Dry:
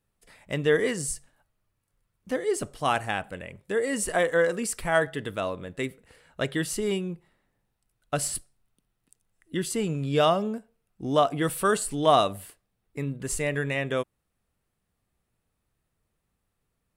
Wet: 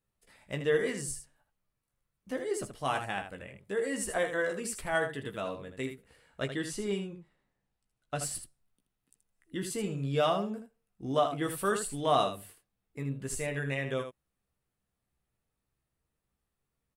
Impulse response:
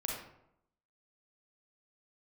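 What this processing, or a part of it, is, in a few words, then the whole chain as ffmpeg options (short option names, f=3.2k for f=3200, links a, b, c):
slapback doubling: -filter_complex "[0:a]asettb=1/sr,asplit=3[a][b][c];[a]atrim=end=6.454[d];[b]atrim=start=6.45:end=8.22,asetpts=PTS-STARTPTS,afade=t=in:d=0.004:c=qsin,afade=t=out:st=1.766:d=0.004:c=qsin,lowpass=9.1k[e];[c]atrim=start=8.216[f];[d][e]acrossfade=d=0.004:c1=hsin:c2=qsin[g];[g][f]acrossfade=d=0.004:c1=qsin:c2=hsin,asplit=3[h][i][j];[i]adelay=15,volume=-6dB[k];[j]adelay=79,volume=-8dB[l];[h][k][l]amix=inputs=3:normalize=0,volume=-7.5dB"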